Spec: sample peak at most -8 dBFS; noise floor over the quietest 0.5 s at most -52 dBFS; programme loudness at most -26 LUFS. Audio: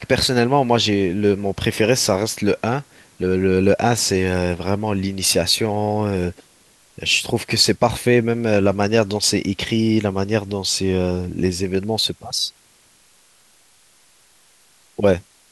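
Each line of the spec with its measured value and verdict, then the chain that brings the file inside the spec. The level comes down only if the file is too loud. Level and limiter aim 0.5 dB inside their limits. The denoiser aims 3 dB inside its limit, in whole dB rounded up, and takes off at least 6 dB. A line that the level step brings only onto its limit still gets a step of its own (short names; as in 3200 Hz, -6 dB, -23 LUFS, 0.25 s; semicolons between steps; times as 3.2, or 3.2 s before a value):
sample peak -3.0 dBFS: fail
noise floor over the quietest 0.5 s -55 dBFS: OK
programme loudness -19.0 LUFS: fail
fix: gain -7.5 dB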